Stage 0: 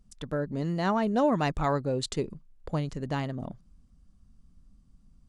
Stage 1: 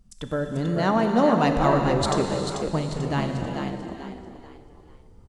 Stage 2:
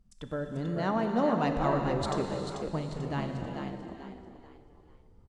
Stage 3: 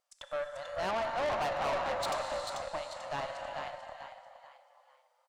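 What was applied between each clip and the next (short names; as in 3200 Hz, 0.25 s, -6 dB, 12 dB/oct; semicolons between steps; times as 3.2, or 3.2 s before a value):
on a send: frequency-shifting echo 0.44 s, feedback 34%, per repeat +59 Hz, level -6 dB; on the sum: non-linear reverb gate 0.5 s flat, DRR 4 dB; gain +4 dB
high shelf 5200 Hz -7.5 dB; gain -7.5 dB
brick-wall FIR high-pass 510 Hz; tube stage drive 35 dB, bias 0.55; gain +6 dB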